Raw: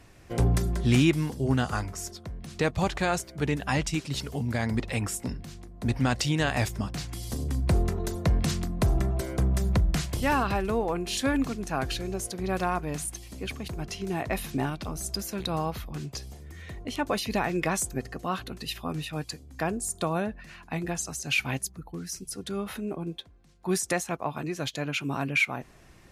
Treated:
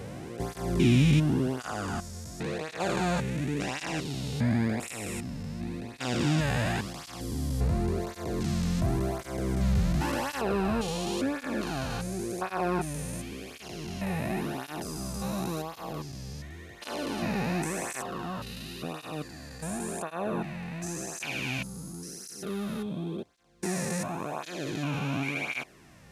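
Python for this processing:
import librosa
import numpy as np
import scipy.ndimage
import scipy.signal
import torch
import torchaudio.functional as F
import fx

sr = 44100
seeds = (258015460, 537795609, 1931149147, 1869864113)

y = fx.spec_steps(x, sr, hold_ms=400)
y = fx.flanger_cancel(y, sr, hz=0.92, depth_ms=3.2)
y = F.gain(torch.from_numpy(y), 5.5).numpy()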